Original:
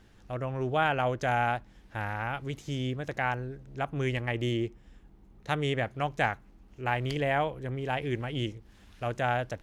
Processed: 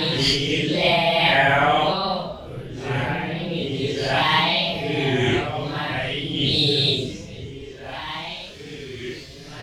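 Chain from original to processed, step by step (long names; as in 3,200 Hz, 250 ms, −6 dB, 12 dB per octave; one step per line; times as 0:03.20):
pitch shifter gated in a rhythm +3.5 semitones, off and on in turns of 118 ms
parametric band 4,600 Hz +14 dB 1.5 octaves
single-tap delay 770 ms −12 dB
extreme stretch with random phases 4.9×, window 0.05 s, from 0:07.05
mains-hum notches 50/100/150 Hz
level +8 dB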